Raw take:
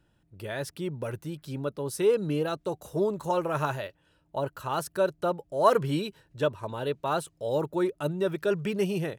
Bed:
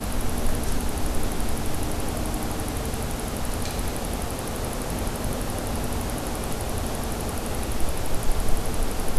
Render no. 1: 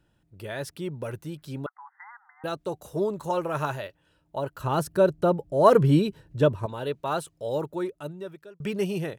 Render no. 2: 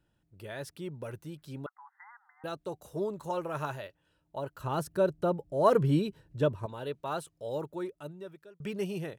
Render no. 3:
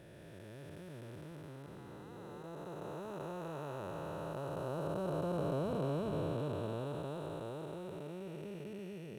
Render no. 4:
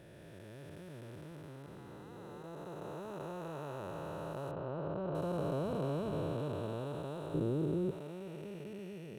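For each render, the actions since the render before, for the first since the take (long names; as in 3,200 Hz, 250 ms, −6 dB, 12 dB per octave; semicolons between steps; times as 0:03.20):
0:01.66–0:02.44: linear-phase brick-wall band-pass 730–2,100 Hz; 0:04.60–0:06.66: low-shelf EQ 500 Hz +11.5 dB; 0:07.46–0:08.60: fade out
level −6.5 dB
spectrum smeared in time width 1,410 ms
0:04.51–0:05.15: high-frequency loss of the air 340 metres; 0:07.34–0:07.91: low shelf with overshoot 480 Hz +11.5 dB, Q 1.5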